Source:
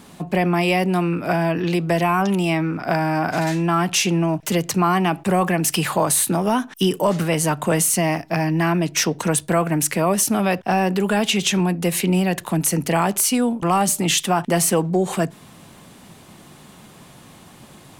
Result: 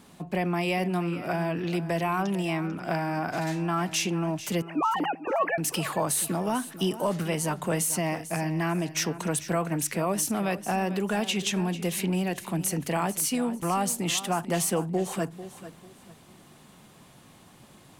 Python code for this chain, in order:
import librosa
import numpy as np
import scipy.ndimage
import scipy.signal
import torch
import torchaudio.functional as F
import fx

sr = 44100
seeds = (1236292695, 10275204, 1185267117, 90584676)

p1 = fx.sine_speech(x, sr, at=(4.62, 5.58))
p2 = p1 + fx.echo_feedback(p1, sr, ms=445, feedback_pct=28, wet_db=-14.0, dry=0)
y = F.gain(torch.from_numpy(p2), -8.5).numpy()